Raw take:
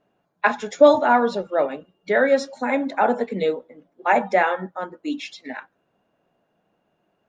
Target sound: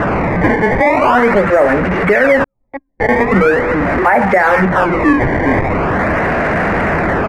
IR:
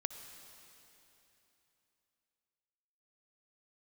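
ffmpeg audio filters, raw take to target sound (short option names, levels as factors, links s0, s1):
-filter_complex "[0:a]aeval=exprs='val(0)+0.5*0.075*sgn(val(0))':c=same,asplit=2[s0][s1];[s1]acompressor=threshold=0.0631:ratio=6,volume=0.794[s2];[s0][s2]amix=inputs=2:normalize=0,equalizer=f=67:w=1.2:g=9.5,acrusher=samples=19:mix=1:aa=0.000001:lfo=1:lforange=30.4:lforate=0.42,acrossover=split=4700[s3][s4];[s4]acompressor=threshold=0.01:ratio=4:attack=1:release=60[s5];[s3][s5]amix=inputs=2:normalize=0,acrusher=bits=5:mix=0:aa=0.000001,highshelf=f=2600:t=q:w=3:g=-9.5,asettb=1/sr,asplit=3[s6][s7][s8];[s6]atrim=end=2.444[s9];[s7]atrim=start=2.44:end=3.09,asetpts=PTS-STARTPTS,afade=t=in:d=0.004:c=qsin,afade=t=out:st=0.646:d=0.004:c=qsin,agate=range=0.0158:threshold=0.282:ratio=16:detection=peak[s10];[s8]atrim=start=3.086[s11];[s9][s10]acrossfade=d=0.004:c1=hsin:c2=qsin[s12];[s12][s11]acrossfade=d=0.004:c1=qsin:c2=hsin,anlmdn=100,aresample=32000,aresample=44100,alimiter=level_in=2.82:limit=0.891:release=50:level=0:latency=1,volume=0.891"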